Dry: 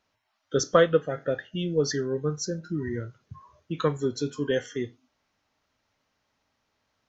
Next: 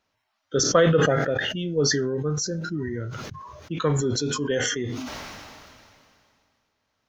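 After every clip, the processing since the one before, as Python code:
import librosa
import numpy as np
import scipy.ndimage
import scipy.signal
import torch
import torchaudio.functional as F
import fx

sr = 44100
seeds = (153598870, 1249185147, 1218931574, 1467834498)

y = fx.sustainer(x, sr, db_per_s=25.0)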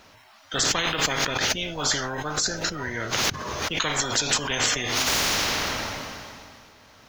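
y = fx.spectral_comp(x, sr, ratio=10.0)
y = y * 10.0 ** (-2.5 / 20.0)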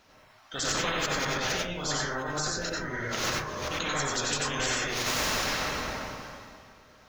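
y = fx.rev_plate(x, sr, seeds[0], rt60_s=0.5, hf_ratio=0.3, predelay_ms=80, drr_db=-4.0)
y = y * 10.0 ** (-9.0 / 20.0)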